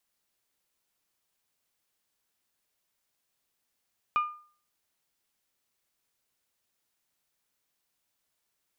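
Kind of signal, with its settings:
struck glass bell, lowest mode 1,210 Hz, decay 0.45 s, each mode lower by 11.5 dB, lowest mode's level −20 dB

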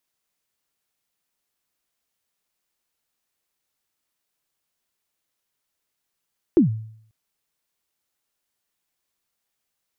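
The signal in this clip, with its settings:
synth kick length 0.54 s, from 380 Hz, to 110 Hz, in 121 ms, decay 0.63 s, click off, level −8.5 dB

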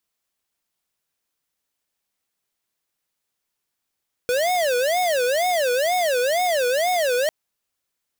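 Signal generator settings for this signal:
siren wail 487–733 Hz 2.1 per second square −20.5 dBFS 3.00 s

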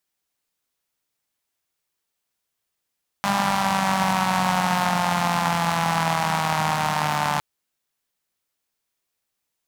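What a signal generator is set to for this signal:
pulse-train model of a four-cylinder engine, changing speed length 4.16 s, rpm 6,000, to 4,400, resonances 180/840 Hz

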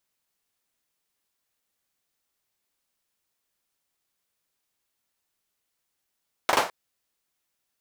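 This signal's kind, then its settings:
synth clap length 0.21 s, bursts 3, apart 40 ms, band 790 Hz, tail 0.31 s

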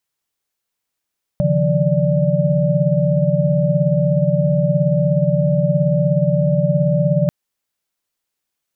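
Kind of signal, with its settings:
held notes C#3/D#3/F3/D5 sine, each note −18.5 dBFS 5.89 s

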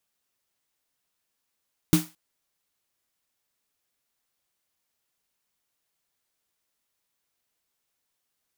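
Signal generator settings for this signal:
synth snare length 0.22 s, tones 170 Hz, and 310 Hz, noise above 640 Hz, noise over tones −8.5 dB, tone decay 0.21 s, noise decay 0.30 s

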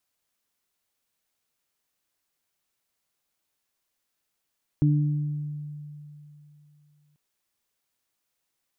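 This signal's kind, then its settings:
harmonic partials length 2.34 s, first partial 148 Hz, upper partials −5 dB, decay 3.02 s, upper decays 1.20 s, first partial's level −17 dB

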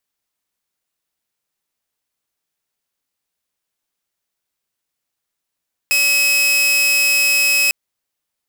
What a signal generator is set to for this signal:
tone saw 2,560 Hz −10 dBFS 1.80 s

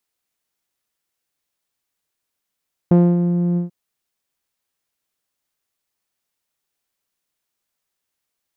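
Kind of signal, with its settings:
subtractive voice saw F3 12 dB per octave, low-pass 250 Hz, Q 0.73, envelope 1 octave, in 0.42 s, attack 4.5 ms, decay 0.25 s, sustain −6.5 dB, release 0.13 s, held 0.66 s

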